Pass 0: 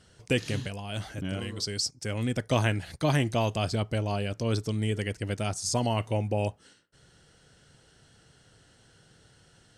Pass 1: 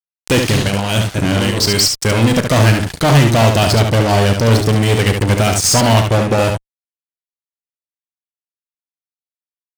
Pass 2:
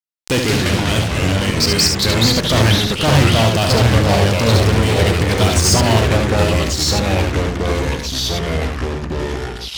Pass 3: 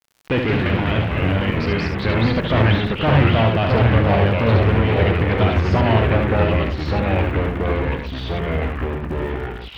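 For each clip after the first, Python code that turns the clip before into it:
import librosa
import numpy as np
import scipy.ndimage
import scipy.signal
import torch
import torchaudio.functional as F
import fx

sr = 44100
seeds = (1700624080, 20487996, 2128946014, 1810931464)

y1 = fx.fuzz(x, sr, gain_db=33.0, gate_db=-40.0)
y1 = fx.room_early_taps(y1, sr, ms=(35, 71), db=(-13.0, -5.0))
y1 = y1 * librosa.db_to_amplitude(3.5)
y2 = fx.peak_eq(y1, sr, hz=4700.0, db=3.5, octaves=0.82)
y2 = fx.echo_pitch(y2, sr, ms=87, semitones=-3, count=3, db_per_echo=-3.0)
y2 = y2 * librosa.db_to_amplitude(-4.0)
y3 = scipy.signal.sosfilt(scipy.signal.butter(4, 2700.0, 'lowpass', fs=sr, output='sos'), y2)
y3 = fx.dmg_crackle(y3, sr, seeds[0], per_s=110.0, level_db=-37.0)
y3 = y3 * librosa.db_to_amplitude(-2.0)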